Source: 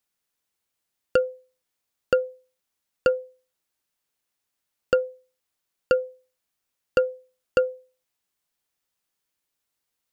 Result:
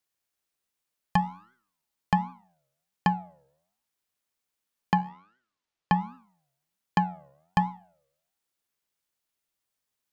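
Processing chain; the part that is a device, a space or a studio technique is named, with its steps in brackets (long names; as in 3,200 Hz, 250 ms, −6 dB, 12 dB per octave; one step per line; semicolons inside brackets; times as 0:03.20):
alien voice (ring modulation 330 Hz; flanger 1.3 Hz, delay 7.5 ms, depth 7.5 ms, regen +90%)
0:05.09–0:06.01: low-pass filter 5,300 Hz
level +4.5 dB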